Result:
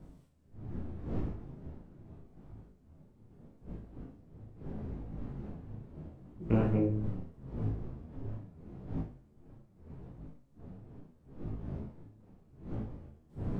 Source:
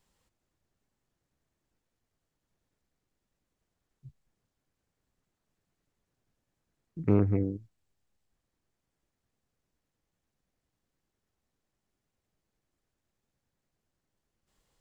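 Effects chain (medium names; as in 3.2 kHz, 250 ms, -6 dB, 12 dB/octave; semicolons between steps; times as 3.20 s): wind noise 170 Hz -41 dBFS; flutter echo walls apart 7 m, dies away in 0.49 s; speed mistake 44.1 kHz file played as 48 kHz; detune thickener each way 27 cents; trim +1 dB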